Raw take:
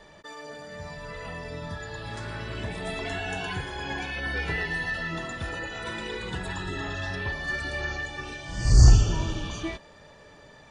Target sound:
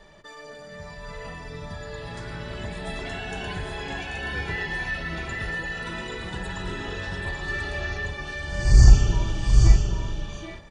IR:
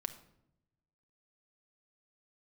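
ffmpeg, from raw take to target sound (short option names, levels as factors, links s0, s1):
-filter_complex "[0:a]aecho=1:1:786|827:0.447|0.473,asplit=2[s0][s1];[1:a]atrim=start_sample=2205,lowshelf=f=75:g=11.5[s2];[s1][s2]afir=irnorm=-1:irlink=0,volume=1.68[s3];[s0][s3]amix=inputs=2:normalize=0,volume=0.335"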